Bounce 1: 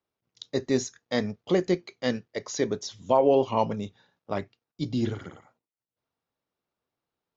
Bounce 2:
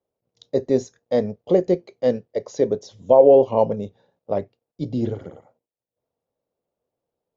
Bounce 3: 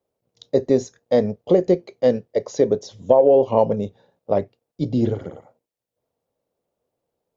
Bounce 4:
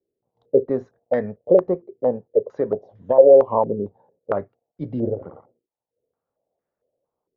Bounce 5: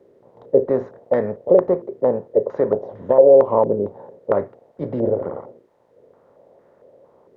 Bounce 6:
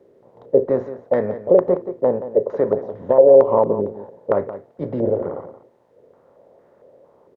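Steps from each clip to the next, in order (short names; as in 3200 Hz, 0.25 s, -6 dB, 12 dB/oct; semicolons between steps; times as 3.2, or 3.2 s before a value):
EQ curve 340 Hz 0 dB, 520 Hz +9 dB, 1300 Hz -10 dB; gain +3 dB
compressor 4:1, threshold -15 dBFS, peak gain reduction 7.5 dB; gain +4 dB
stepped low-pass 4.4 Hz 370–1700 Hz; gain -6.5 dB
per-bin compression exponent 0.6; gain -1.5 dB
echo 0.175 s -13 dB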